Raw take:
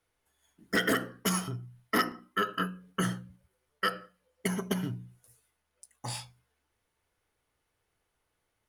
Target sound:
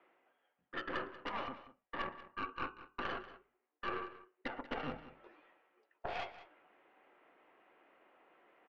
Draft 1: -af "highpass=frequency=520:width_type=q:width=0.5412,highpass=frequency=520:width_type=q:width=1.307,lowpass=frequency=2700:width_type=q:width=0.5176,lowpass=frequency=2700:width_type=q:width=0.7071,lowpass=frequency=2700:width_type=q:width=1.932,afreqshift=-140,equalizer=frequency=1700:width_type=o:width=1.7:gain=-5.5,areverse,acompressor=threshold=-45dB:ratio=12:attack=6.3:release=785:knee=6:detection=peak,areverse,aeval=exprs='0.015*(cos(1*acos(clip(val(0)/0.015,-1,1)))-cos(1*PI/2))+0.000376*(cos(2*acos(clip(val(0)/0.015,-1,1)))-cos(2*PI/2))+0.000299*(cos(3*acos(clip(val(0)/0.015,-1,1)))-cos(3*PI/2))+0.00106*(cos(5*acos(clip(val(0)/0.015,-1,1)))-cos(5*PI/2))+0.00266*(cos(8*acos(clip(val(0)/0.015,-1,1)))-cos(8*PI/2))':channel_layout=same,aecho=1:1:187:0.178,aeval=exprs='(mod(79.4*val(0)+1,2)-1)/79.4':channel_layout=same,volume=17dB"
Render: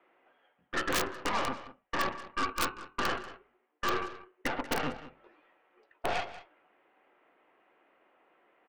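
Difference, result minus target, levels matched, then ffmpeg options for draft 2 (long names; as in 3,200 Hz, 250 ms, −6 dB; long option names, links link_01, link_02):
downward compressor: peak gain reduction −10.5 dB
-af "highpass=frequency=520:width_type=q:width=0.5412,highpass=frequency=520:width_type=q:width=1.307,lowpass=frequency=2700:width_type=q:width=0.5176,lowpass=frequency=2700:width_type=q:width=0.7071,lowpass=frequency=2700:width_type=q:width=1.932,afreqshift=-140,equalizer=frequency=1700:width_type=o:width=1.7:gain=-5.5,areverse,acompressor=threshold=-56.5dB:ratio=12:attack=6.3:release=785:knee=6:detection=peak,areverse,aeval=exprs='0.015*(cos(1*acos(clip(val(0)/0.015,-1,1)))-cos(1*PI/2))+0.000376*(cos(2*acos(clip(val(0)/0.015,-1,1)))-cos(2*PI/2))+0.000299*(cos(3*acos(clip(val(0)/0.015,-1,1)))-cos(3*PI/2))+0.00106*(cos(5*acos(clip(val(0)/0.015,-1,1)))-cos(5*PI/2))+0.00266*(cos(8*acos(clip(val(0)/0.015,-1,1)))-cos(8*PI/2))':channel_layout=same,aecho=1:1:187:0.178,aeval=exprs='(mod(79.4*val(0)+1,2)-1)/79.4':channel_layout=same,volume=17dB"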